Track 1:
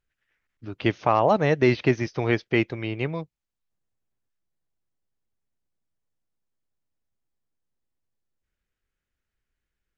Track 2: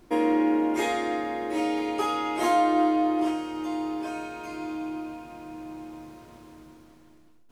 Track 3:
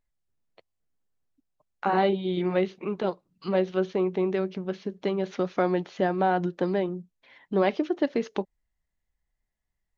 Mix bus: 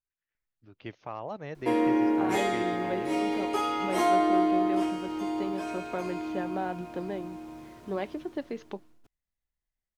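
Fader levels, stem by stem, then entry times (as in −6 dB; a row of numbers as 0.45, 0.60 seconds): −18.0, −1.5, −9.5 decibels; 0.00, 1.55, 0.35 seconds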